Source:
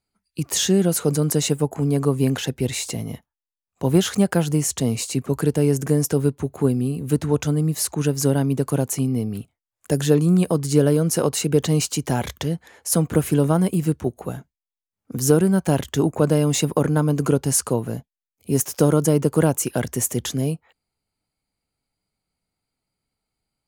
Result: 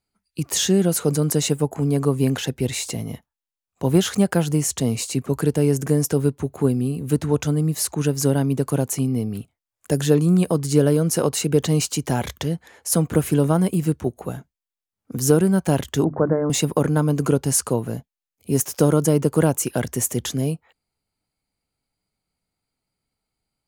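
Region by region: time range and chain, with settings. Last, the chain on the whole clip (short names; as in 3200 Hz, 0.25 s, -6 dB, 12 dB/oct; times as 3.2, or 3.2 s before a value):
16.04–16.5 steep low-pass 1900 Hz 72 dB/oct + notches 50/100/150/200/250/300/350 Hz
whole clip: dry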